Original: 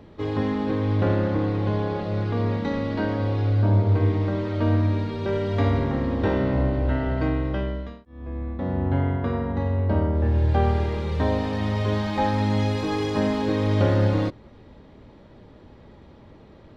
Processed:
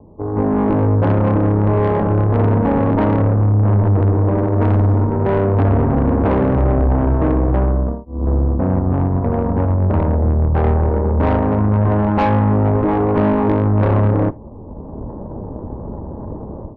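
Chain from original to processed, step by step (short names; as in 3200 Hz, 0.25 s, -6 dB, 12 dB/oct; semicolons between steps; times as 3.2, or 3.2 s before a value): self-modulated delay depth 0.41 ms; steep low-pass 1100 Hz 96 dB/oct; low shelf 110 Hz +3 dB; AGC gain up to 16.5 dB; in parallel at 0 dB: limiter -10.5 dBFS, peak gain reduction 9.5 dB; 4.38–5.02 on the sum: overloaded stage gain 5 dB; 8.79–10.64 AM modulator 85 Hz, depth 30%; tube stage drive 11 dB, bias 0.7; on a send at -18 dB: reverb, pre-delay 3 ms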